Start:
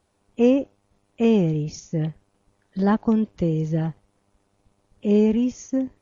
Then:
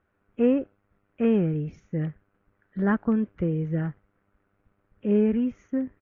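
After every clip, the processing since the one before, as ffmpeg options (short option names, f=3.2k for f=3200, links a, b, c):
-af "firequalizer=gain_entry='entry(400,0);entry(890,-5);entry(1400,9);entry(4600,-24)':delay=0.05:min_phase=1,volume=-3.5dB"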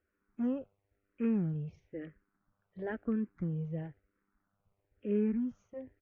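-filter_complex "[0:a]asplit=2[a][b];[b]afreqshift=-1[c];[a][c]amix=inputs=2:normalize=1,volume=-7.5dB"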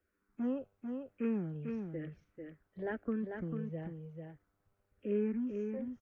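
-filter_complex "[0:a]acrossover=split=230|450[a][b][c];[a]acompressor=threshold=-45dB:ratio=6[d];[d][b][c]amix=inputs=3:normalize=0,aecho=1:1:444:0.531"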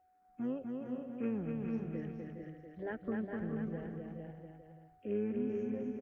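-af "tremolo=f=110:d=0.333,aeval=exprs='val(0)+0.000447*sin(2*PI*740*n/s)':c=same,aecho=1:1:250|412.5|518.1|586.8|631.4:0.631|0.398|0.251|0.158|0.1,volume=-1dB"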